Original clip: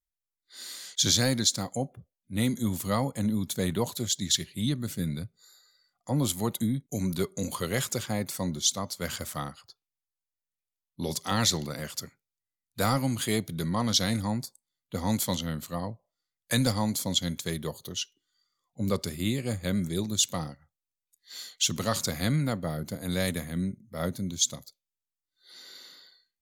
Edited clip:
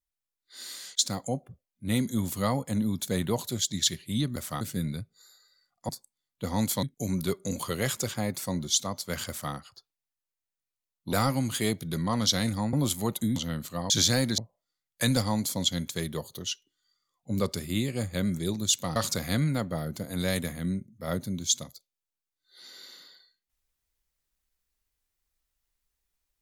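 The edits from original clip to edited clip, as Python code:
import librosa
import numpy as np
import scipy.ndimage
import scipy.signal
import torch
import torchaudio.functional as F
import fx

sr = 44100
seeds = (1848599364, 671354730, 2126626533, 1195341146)

y = fx.edit(x, sr, fx.move(start_s=0.99, length_s=0.48, to_s=15.88),
    fx.swap(start_s=6.12, length_s=0.63, other_s=14.4, other_length_s=0.94),
    fx.duplicate(start_s=9.2, length_s=0.25, to_s=4.84),
    fx.cut(start_s=11.05, length_s=1.75),
    fx.cut(start_s=20.46, length_s=1.42), tone=tone)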